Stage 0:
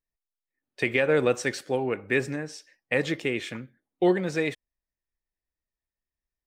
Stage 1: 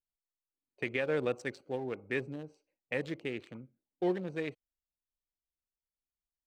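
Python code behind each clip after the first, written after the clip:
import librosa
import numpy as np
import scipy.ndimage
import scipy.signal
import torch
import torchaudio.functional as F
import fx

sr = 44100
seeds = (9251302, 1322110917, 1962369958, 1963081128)

y = fx.wiener(x, sr, points=25)
y = F.gain(torch.from_numpy(y), -9.0).numpy()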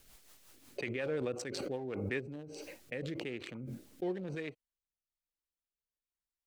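y = fx.rotary_switch(x, sr, hz=5.5, then_hz=1.0, switch_at_s=2.02)
y = fx.pre_swell(y, sr, db_per_s=22.0)
y = F.gain(torch.from_numpy(y), -3.0).numpy()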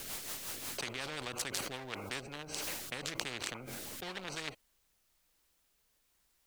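y = fx.spectral_comp(x, sr, ratio=4.0)
y = F.gain(torch.from_numpy(y), 10.0).numpy()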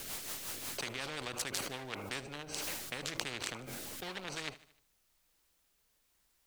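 y = fx.echo_feedback(x, sr, ms=76, feedback_pct=52, wet_db=-18)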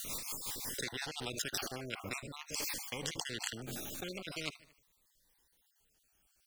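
y = fx.spec_dropout(x, sr, seeds[0], share_pct=42)
y = fx.notch_cascade(y, sr, direction='falling', hz=0.43)
y = F.gain(torch.from_numpy(y), 3.5).numpy()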